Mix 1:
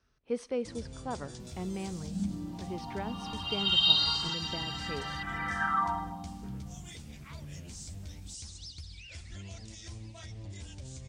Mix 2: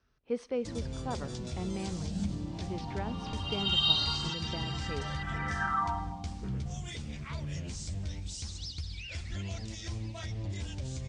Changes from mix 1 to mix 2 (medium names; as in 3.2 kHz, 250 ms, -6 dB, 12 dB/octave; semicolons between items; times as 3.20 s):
first sound +7.0 dB; second sound: send off; master: add distance through air 68 m